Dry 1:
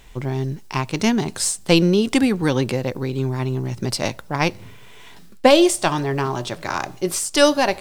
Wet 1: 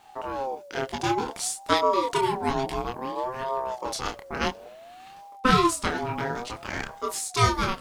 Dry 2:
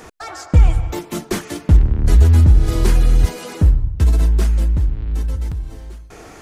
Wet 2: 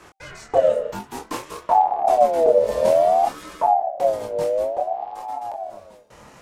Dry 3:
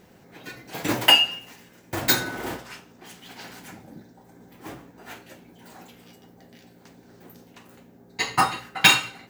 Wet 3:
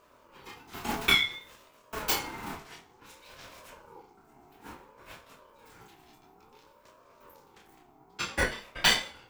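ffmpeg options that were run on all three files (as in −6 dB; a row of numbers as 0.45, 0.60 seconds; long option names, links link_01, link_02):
-af "flanger=delay=22.5:depth=6.7:speed=1.1,aeval=exprs='val(0)*sin(2*PI*670*n/s+670*0.2/0.57*sin(2*PI*0.57*n/s))':channel_layout=same,volume=-1.5dB"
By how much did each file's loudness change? −7.0, −3.5, −7.5 LU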